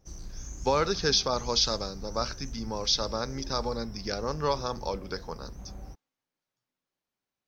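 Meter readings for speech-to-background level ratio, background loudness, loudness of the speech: 14.5 dB, -44.0 LUFS, -29.5 LUFS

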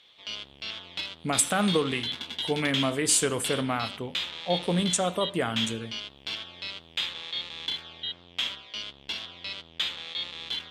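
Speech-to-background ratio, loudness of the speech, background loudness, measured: 6.0 dB, -27.0 LUFS, -33.0 LUFS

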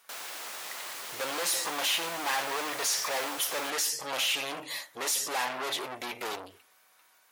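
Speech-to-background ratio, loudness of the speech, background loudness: 7.5 dB, -30.5 LUFS, -38.0 LUFS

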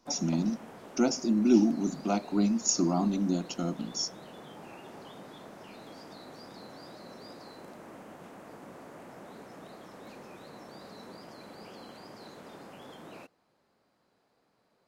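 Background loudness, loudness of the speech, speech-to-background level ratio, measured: -48.0 LUFS, -28.5 LUFS, 19.5 dB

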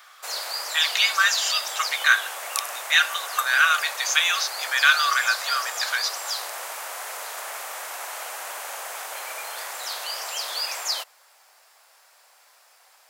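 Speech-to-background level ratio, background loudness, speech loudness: 8.0 dB, -29.5 LUFS, -21.5 LUFS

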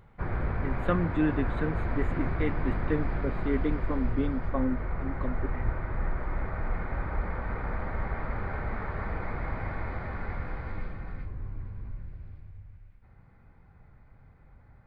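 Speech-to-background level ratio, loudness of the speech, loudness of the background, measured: 1.5 dB, -33.0 LUFS, -34.5 LUFS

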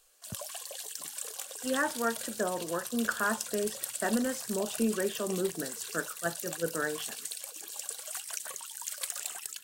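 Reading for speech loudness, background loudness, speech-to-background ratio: -33.5 LUFS, -37.5 LUFS, 4.0 dB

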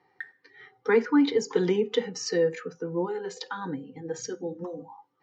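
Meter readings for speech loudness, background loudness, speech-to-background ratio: -28.0 LUFS, -43.0 LUFS, 15.0 dB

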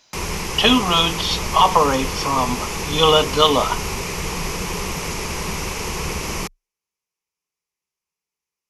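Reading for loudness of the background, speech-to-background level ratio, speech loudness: -25.5 LUFS, 8.0 dB, -17.5 LUFS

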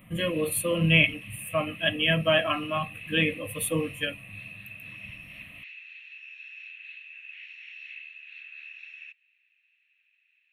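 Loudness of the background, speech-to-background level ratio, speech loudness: -42.0 LUFS, 16.5 dB, -25.5 LUFS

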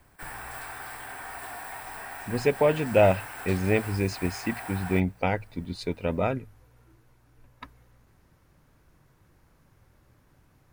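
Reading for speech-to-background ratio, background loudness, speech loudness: 12.0 dB, -39.0 LUFS, -27.0 LUFS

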